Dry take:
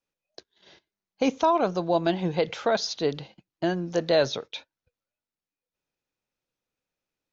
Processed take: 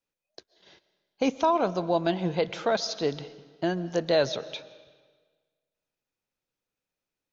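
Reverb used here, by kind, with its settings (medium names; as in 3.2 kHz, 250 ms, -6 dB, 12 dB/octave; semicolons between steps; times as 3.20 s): algorithmic reverb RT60 1.5 s, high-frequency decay 0.9×, pre-delay 95 ms, DRR 16.5 dB; trim -1.5 dB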